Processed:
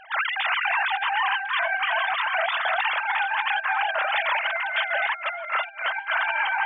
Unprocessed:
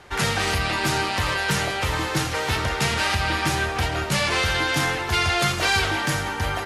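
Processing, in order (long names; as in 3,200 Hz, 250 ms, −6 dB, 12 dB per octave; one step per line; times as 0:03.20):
three sine waves on the formant tracks
delay that swaps between a low-pass and a high-pass 306 ms, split 1,800 Hz, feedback 53%, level −3 dB
compressor whose output falls as the input rises −24 dBFS, ratio −0.5
parametric band 240 Hz −7 dB 1.5 octaves
notch filter 720 Hz, Q 16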